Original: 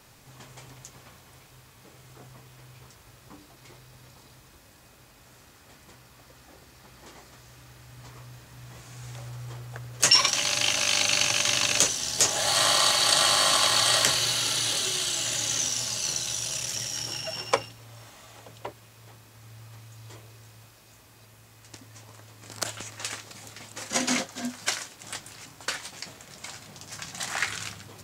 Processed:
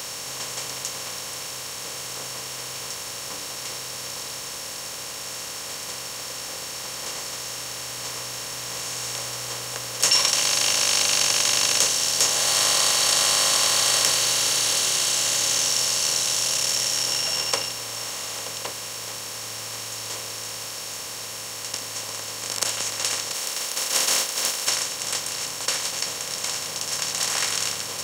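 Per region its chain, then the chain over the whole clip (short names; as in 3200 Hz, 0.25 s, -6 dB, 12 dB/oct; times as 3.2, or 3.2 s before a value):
23.33–24.66 spectral contrast lowered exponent 0.37 + HPF 320 Hz
whole clip: per-bin compression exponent 0.4; high shelf 5900 Hz +8.5 dB; gain -7.5 dB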